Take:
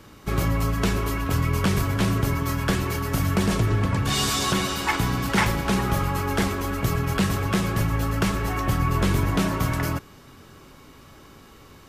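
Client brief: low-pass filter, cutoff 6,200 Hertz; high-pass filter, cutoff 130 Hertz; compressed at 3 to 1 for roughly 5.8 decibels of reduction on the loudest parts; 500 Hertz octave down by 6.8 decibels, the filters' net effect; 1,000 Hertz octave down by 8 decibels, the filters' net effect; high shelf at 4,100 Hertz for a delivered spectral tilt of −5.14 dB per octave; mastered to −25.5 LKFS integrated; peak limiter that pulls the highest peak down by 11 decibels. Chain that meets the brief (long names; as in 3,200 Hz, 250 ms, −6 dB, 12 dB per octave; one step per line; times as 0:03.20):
high-pass filter 130 Hz
low-pass filter 6,200 Hz
parametric band 500 Hz −7.5 dB
parametric band 1,000 Hz −7.5 dB
high-shelf EQ 4,100 Hz −8.5 dB
downward compressor 3 to 1, threshold −29 dBFS
level +11.5 dB
brickwall limiter −17 dBFS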